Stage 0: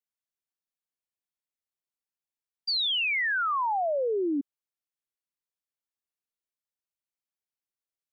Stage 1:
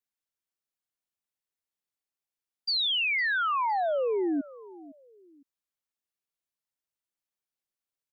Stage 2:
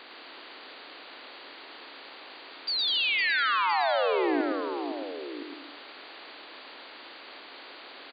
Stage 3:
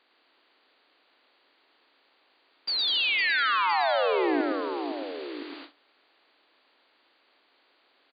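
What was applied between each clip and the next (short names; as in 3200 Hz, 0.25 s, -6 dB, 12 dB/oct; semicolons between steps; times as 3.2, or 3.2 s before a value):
feedback echo 0.509 s, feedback 30%, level -19.5 dB
per-bin compression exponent 0.4; bouncing-ball echo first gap 0.11 s, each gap 0.8×, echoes 5; gain -3 dB
gate with hold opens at -33 dBFS; gain +1 dB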